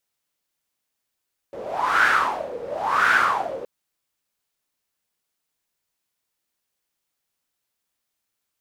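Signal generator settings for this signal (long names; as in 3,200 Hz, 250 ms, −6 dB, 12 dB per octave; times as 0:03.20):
wind from filtered noise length 2.12 s, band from 480 Hz, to 1,500 Hz, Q 7.4, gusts 2, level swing 16.5 dB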